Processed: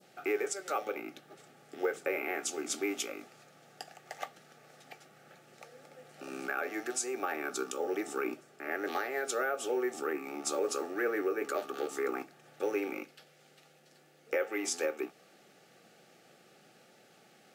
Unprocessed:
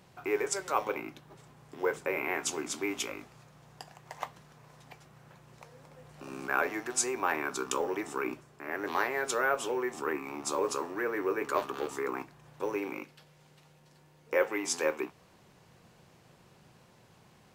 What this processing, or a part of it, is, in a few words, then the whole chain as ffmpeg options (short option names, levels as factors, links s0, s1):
PA system with an anti-feedback notch: -af "highpass=130,highpass=250,asuperstop=centerf=1000:order=8:qfactor=4.1,alimiter=limit=0.0708:level=0:latency=1:release=230,adynamicequalizer=threshold=0.00447:dfrequency=2100:dqfactor=0.75:tfrequency=2100:tqfactor=0.75:attack=5:release=100:ratio=0.375:range=2.5:mode=cutabove:tftype=bell,volume=1.26"